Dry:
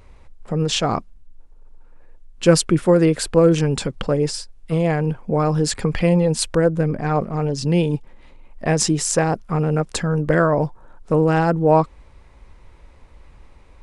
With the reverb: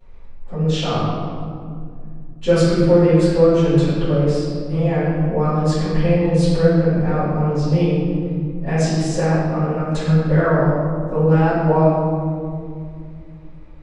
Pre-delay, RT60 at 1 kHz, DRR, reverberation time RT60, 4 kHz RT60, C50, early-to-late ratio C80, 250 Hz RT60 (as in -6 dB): 3 ms, 1.9 s, -18.5 dB, 2.3 s, 1.2 s, -2.5 dB, 0.0 dB, 3.7 s